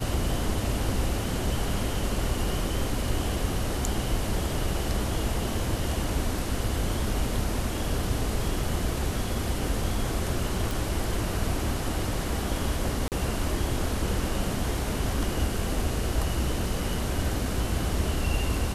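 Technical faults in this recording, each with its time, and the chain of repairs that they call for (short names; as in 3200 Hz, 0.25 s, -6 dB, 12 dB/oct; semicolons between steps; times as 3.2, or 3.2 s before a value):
10.71 pop
13.08–13.12 gap 38 ms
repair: de-click; interpolate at 13.08, 38 ms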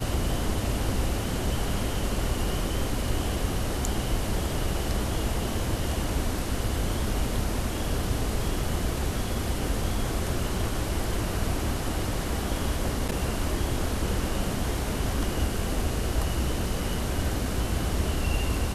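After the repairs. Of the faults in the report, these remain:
none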